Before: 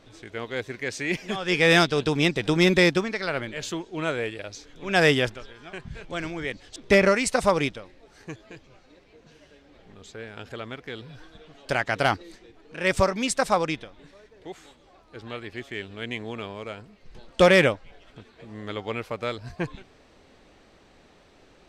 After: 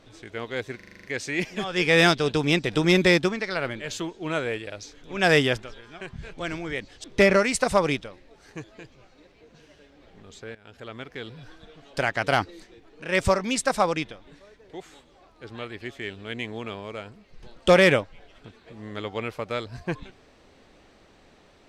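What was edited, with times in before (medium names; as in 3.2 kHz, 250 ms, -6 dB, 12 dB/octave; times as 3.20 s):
0.76 s: stutter 0.04 s, 8 plays
10.27–10.80 s: fade in, from -16.5 dB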